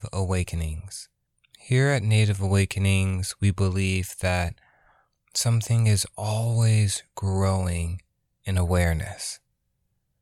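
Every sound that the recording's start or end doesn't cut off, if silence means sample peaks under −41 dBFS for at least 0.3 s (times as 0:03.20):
0:01.55–0:04.58
0:05.32–0:08.00
0:08.46–0:09.36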